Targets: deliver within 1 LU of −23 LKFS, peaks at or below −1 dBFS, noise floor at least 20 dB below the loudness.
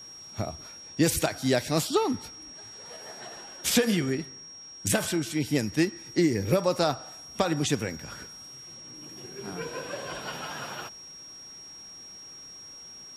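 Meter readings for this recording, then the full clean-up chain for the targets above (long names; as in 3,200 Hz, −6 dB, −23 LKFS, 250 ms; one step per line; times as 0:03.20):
interfering tone 5,600 Hz; level of the tone −43 dBFS; integrated loudness −28.0 LKFS; sample peak −9.0 dBFS; target loudness −23.0 LKFS
→ notch filter 5,600 Hz, Q 30
level +5 dB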